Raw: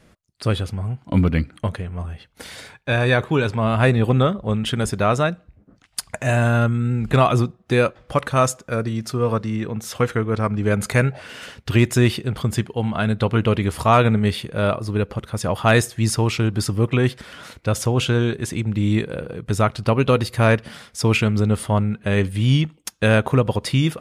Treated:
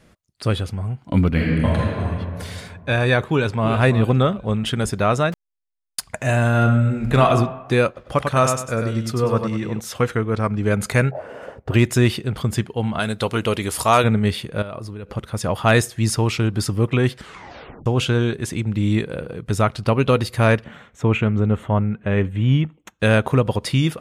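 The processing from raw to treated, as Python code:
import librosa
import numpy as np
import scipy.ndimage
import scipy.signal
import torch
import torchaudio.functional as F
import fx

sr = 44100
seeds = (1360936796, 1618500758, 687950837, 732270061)

y = fx.reverb_throw(x, sr, start_s=1.29, length_s=0.73, rt60_s=2.2, drr_db=-5.0)
y = fx.echo_throw(y, sr, start_s=3.27, length_s=0.44, ms=330, feedback_pct=30, wet_db=-10.0)
y = fx.delta_hold(y, sr, step_db=-28.0, at=(5.32, 6.0))
y = fx.reverb_throw(y, sr, start_s=6.5, length_s=0.79, rt60_s=1.0, drr_db=4.5)
y = fx.echo_feedback(y, sr, ms=98, feedback_pct=31, wet_db=-5.5, at=(7.87, 9.8))
y = fx.curve_eq(y, sr, hz=(230.0, 590.0, 3900.0, 6900.0), db=(0, 13, -20, -16), at=(11.11, 11.74))
y = fx.bass_treble(y, sr, bass_db=-7, treble_db=11, at=(12.99, 14.04))
y = fx.level_steps(y, sr, step_db=16, at=(14.62, 15.08))
y = fx.moving_average(y, sr, points=9, at=(20.64, 23.0))
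y = fx.edit(y, sr, fx.tape_stop(start_s=17.18, length_s=0.68), tone=tone)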